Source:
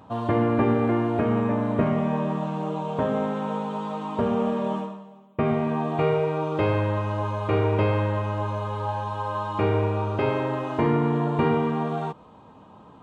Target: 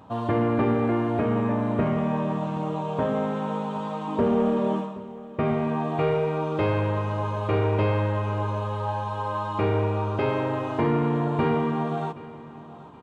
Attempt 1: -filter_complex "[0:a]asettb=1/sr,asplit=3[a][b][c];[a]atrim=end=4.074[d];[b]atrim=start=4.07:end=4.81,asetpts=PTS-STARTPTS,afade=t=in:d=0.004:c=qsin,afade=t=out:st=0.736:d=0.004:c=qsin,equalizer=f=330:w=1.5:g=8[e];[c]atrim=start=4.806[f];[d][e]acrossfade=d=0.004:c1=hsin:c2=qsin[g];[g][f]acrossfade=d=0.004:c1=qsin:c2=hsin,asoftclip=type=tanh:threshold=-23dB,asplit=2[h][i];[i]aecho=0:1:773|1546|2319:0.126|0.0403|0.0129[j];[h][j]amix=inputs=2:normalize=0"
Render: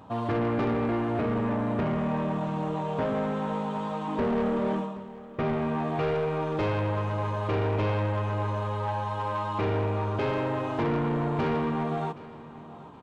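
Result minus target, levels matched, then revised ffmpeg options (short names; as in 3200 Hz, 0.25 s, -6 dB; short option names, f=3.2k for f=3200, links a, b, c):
soft clip: distortion +11 dB
-filter_complex "[0:a]asettb=1/sr,asplit=3[a][b][c];[a]atrim=end=4.074[d];[b]atrim=start=4.07:end=4.81,asetpts=PTS-STARTPTS,afade=t=in:d=0.004:c=qsin,afade=t=out:st=0.736:d=0.004:c=qsin,equalizer=f=330:w=1.5:g=8[e];[c]atrim=start=4.806[f];[d][e]acrossfade=d=0.004:c1=hsin:c2=qsin[g];[g][f]acrossfade=d=0.004:c1=qsin:c2=hsin,asoftclip=type=tanh:threshold=-13.5dB,asplit=2[h][i];[i]aecho=0:1:773|1546|2319:0.126|0.0403|0.0129[j];[h][j]amix=inputs=2:normalize=0"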